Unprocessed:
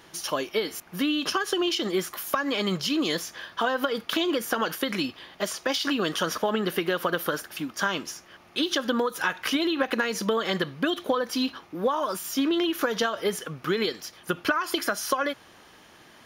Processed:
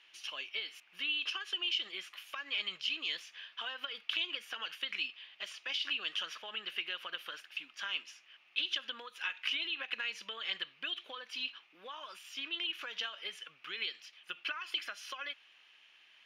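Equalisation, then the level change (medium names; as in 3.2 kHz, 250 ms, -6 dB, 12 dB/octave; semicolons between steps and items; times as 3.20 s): band-pass filter 2.7 kHz, Q 4.2; 0.0 dB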